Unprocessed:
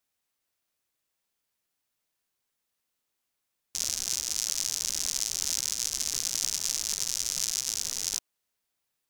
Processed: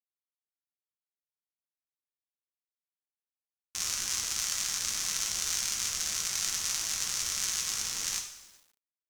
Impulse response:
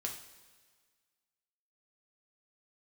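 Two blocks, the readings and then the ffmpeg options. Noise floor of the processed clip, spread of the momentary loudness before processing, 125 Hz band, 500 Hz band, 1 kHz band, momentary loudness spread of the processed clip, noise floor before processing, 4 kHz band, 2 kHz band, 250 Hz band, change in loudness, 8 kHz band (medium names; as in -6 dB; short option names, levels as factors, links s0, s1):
under -85 dBFS, 3 LU, +1.0 dB, -0.5 dB, +6.5 dB, 4 LU, -82 dBFS, -1.0 dB, +5.5 dB, 0.0 dB, -1.5 dB, -1.5 dB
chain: -filter_complex "[0:a]firequalizer=gain_entry='entry(620,0);entry(1200,8);entry(4600,-2)':delay=0.05:min_phase=1[s0];[1:a]atrim=start_sample=2205[s1];[s0][s1]afir=irnorm=-1:irlink=0,aeval=exprs='val(0)*gte(abs(val(0)),0.00211)':c=same,bandreject=f=420:w=12"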